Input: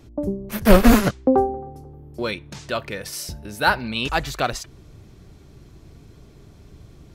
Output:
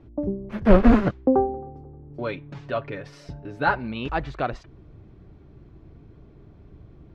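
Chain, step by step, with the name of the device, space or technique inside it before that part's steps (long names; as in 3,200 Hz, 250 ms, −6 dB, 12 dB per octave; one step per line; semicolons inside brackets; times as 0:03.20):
0:02.09–0:03.75: comb filter 7.1 ms, depth 66%
phone in a pocket (low-pass filter 3,200 Hz 12 dB per octave; parametric band 320 Hz +3 dB 0.23 octaves; high-shelf EQ 2,200 Hz −11 dB)
level −2 dB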